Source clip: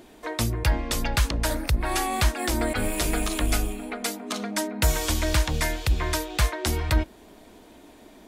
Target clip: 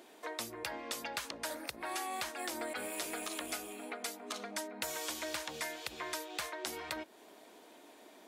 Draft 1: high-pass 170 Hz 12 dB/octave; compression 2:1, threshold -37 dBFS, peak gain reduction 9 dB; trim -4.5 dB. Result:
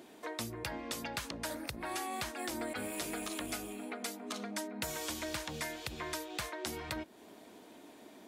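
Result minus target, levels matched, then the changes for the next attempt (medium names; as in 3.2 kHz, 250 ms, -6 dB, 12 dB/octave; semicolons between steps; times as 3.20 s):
125 Hz band +12.0 dB
change: high-pass 390 Hz 12 dB/octave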